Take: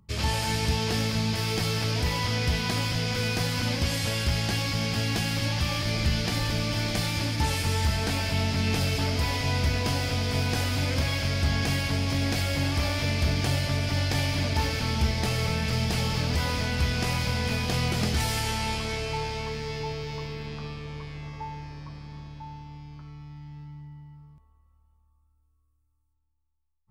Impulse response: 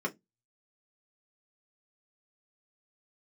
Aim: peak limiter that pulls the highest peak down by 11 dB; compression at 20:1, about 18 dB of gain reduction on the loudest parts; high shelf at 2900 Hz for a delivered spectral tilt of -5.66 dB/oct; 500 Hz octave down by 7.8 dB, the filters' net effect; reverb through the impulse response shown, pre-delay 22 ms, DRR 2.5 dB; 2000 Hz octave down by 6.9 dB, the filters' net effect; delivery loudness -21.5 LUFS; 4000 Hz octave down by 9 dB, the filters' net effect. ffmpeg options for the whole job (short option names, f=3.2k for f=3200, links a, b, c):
-filter_complex "[0:a]equalizer=f=500:t=o:g=-9,equalizer=f=2k:t=o:g=-4,highshelf=f=2.9k:g=-6.5,equalizer=f=4k:t=o:g=-5,acompressor=threshold=-39dB:ratio=20,alimiter=level_in=17.5dB:limit=-24dB:level=0:latency=1,volume=-17.5dB,asplit=2[a][b];[1:a]atrim=start_sample=2205,adelay=22[c];[b][c]afir=irnorm=-1:irlink=0,volume=-8.5dB[d];[a][d]amix=inputs=2:normalize=0,volume=27.5dB"